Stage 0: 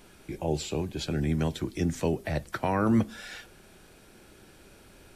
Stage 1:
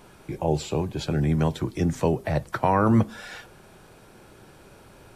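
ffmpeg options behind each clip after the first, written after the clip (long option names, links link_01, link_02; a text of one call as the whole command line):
ffmpeg -i in.wav -af "equalizer=frequency=125:width_type=o:width=1:gain=8,equalizer=frequency=500:width_type=o:width=1:gain=4,equalizer=frequency=1000:width_type=o:width=1:gain=8" out.wav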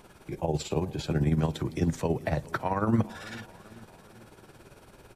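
ffmpeg -i in.wav -af "alimiter=limit=-14.5dB:level=0:latency=1:release=62,tremolo=f=18:d=0.61,aecho=1:1:415|830|1245|1660:0.1|0.052|0.027|0.0141" out.wav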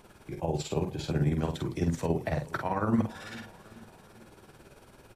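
ffmpeg -i in.wav -filter_complex "[0:a]asplit=2[link_01][link_02];[link_02]adelay=48,volume=-5.5dB[link_03];[link_01][link_03]amix=inputs=2:normalize=0,volume=-2.5dB" out.wav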